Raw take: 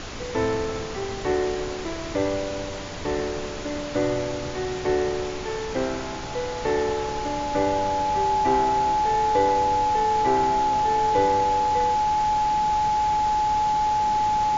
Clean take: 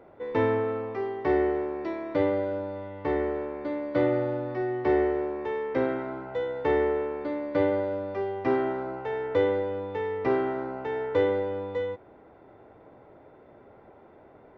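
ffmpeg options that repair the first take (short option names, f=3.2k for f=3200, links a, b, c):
-af "bandreject=f=850:w=30,afftdn=nr=21:nf=-31"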